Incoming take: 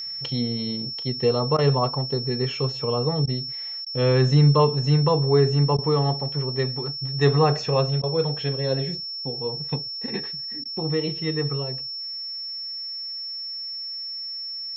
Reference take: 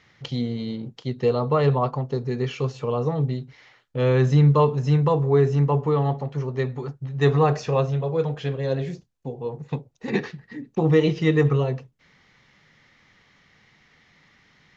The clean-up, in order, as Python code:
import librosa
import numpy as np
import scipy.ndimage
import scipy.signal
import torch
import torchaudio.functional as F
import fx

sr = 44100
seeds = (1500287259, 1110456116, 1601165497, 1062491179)

y = fx.notch(x, sr, hz=5400.0, q=30.0)
y = fx.fix_interpolate(y, sr, at_s=(1.57, 3.26, 3.85, 5.77, 8.02, 10.64), length_ms=13.0)
y = fx.fix_level(y, sr, at_s=10.06, step_db=7.5)